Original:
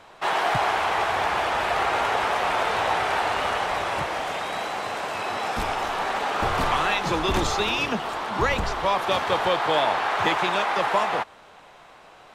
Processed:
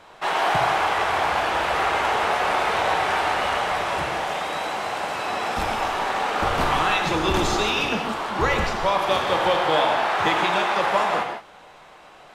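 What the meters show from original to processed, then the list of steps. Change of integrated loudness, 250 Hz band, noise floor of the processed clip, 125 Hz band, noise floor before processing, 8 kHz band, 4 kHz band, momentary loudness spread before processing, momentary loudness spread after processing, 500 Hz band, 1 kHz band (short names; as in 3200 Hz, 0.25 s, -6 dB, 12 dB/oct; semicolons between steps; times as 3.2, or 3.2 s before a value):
+2.0 dB, +2.5 dB, -47 dBFS, +1.5 dB, -49 dBFS, +2.0 dB, +2.0 dB, 6 LU, 6 LU, +2.0 dB, +2.0 dB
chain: non-linear reverb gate 0.2 s flat, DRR 2.5 dB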